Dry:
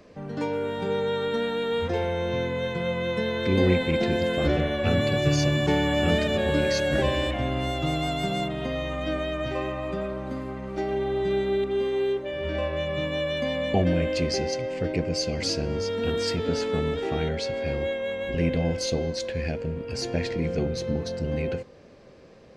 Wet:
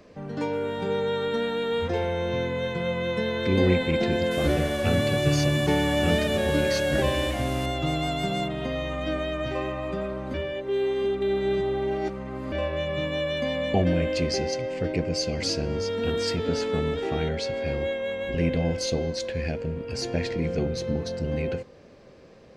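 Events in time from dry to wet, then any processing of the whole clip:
0:04.31–0:07.66: linear delta modulator 64 kbit/s, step −33.5 dBFS
0:10.34–0:12.52: reverse

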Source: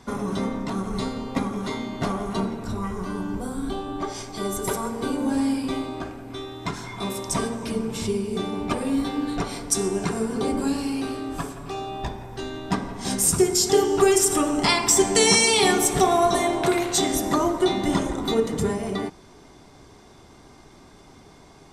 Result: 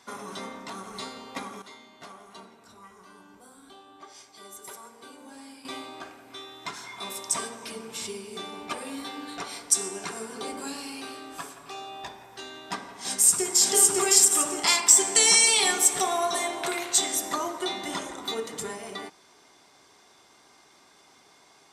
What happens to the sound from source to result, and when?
0:01.62–0:05.65: clip gain −10.5 dB
0:12.89–0:13.68: delay throw 560 ms, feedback 45%, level 0 dB
whole clip: high-pass filter 1,300 Hz 6 dB per octave; dynamic equaliser 7,800 Hz, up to +6 dB, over −40 dBFS, Q 4.1; level −1 dB

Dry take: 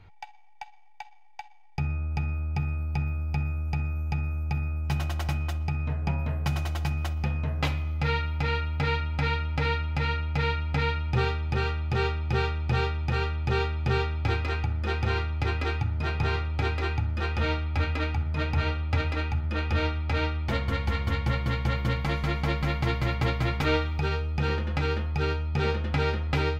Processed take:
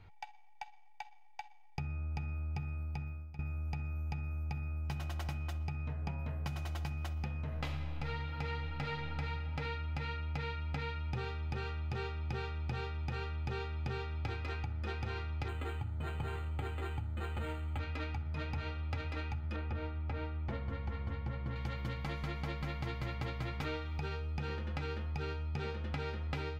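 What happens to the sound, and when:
0:02.64–0:03.39: fade out, to −21 dB
0:07.37–0:09.20: thrown reverb, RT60 2.2 s, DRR 3 dB
0:15.48–0:17.79: linearly interpolated sample-rate reduction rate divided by 8×
0:19.56–0:21.56: low-pass filter 1,200 Hz 6 dB per octave
whole clip: downward compressor, threshold −31 dBFS; level −4.5 dB

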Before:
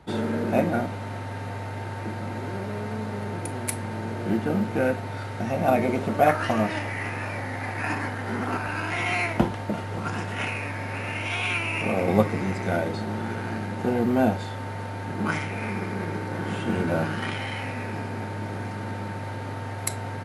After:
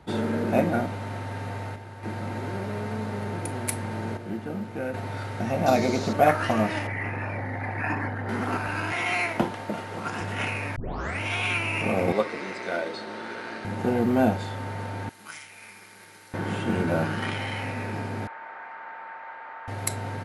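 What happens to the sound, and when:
0:01.42–0:02.37: duck −8.5 dB, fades 0.34 s logarithmic
0:04.17–0:04.94: clip gain −8 dB
0:05.66–0:06.13: flat-topped bell 5,200 Hz +13.5 dB 1.1 octaves
0:06.87–0:08.29: spectral envelope exaggerated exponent 1.5
0:08.92–0:10.21: high-pass filter 260 Hz 6 dB per octave
0:10.76: tape start 0.44 s
0:12.12–0:13.65: loudspeaker in its box 410–8,900 Hz, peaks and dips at 790 Hz −7 dB, 4,100 Hz +4 dB, 7,100 Hz −6 dB
0:15.09–0:16.34: first-order pre-emphasis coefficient 0.97
0:18.27–0:19.68: flat-topped band-pass 1,300 Hz, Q 0.98

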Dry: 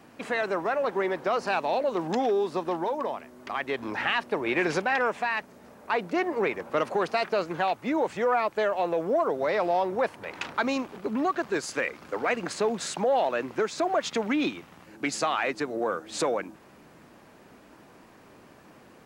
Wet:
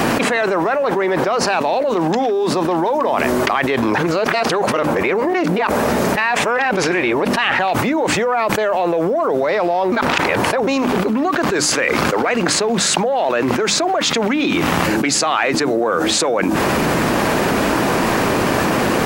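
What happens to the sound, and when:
0:03.98–0:07.59: reverse
0:09.92–0:10.67: reverse
whole clip: mains-hum notches 50/100/150/200/250/300 Hz; envelope flattener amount 100%; level +4.5 dB

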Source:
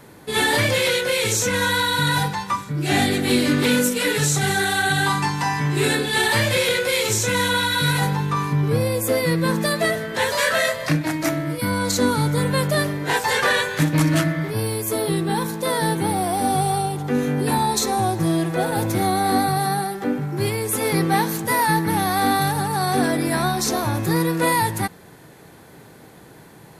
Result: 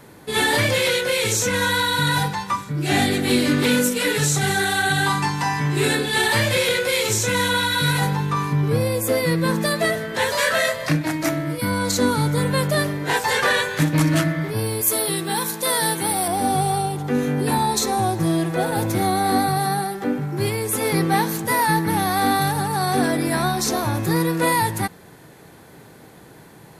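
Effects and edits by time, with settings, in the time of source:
0:14.81–0:16.28: spectral tilt +2.5 dB per octave

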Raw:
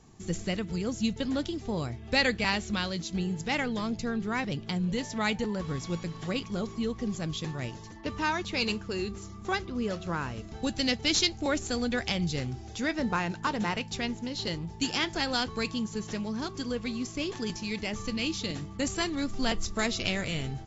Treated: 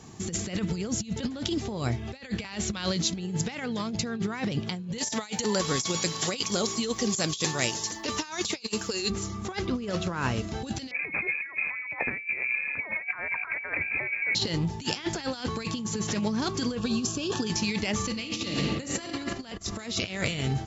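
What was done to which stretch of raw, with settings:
0:04.98–0:09.10: bass and treble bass −10 dB, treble +14 dB
0:10.91–0:14.35: voice inversion scrambler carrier 2,500 Hz
0:16.78–0:17.47: Butterworth band-reject 2,100 Hz, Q 3.1
0:18.05–0:19.07: thrown reverb, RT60 1.8 s, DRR 2 dB
whole clip: high-shelf EQ 2,100 Hz +2.5 dB; compressor whose output falls as the input rises −34 dBFS, ratio −0.5; high-pass filter 74 Hz; level +5 dB

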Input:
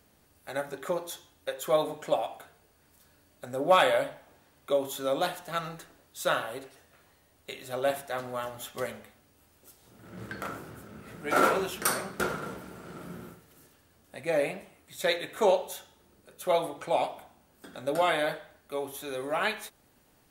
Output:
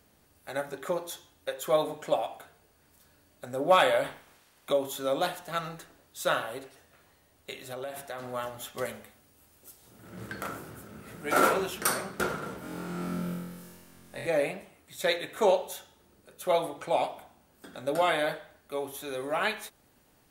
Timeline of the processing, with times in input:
0:04.03–0:04.71: ceiling on every frequency bin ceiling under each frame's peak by 15 dB
0:07.57–0:08.30: downward compressor 10 to 1, threshold −33 dBFS
0:08.85–0:11.54: parametric band 12,000 Hz +5 dB 1.5 octaves
0:12.60–0:14.27: flutter between parallel walls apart 3.9 metres, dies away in 1.3 s

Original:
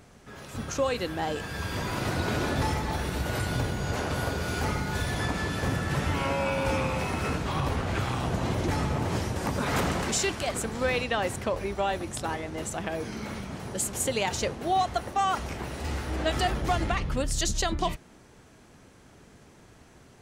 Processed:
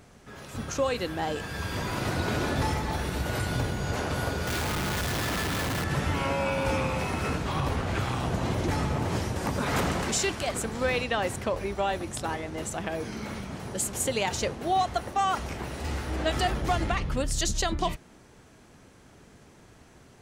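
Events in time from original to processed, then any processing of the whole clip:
0:04.47–0:05.84: comparator with hysteresis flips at −44.5 dBFS

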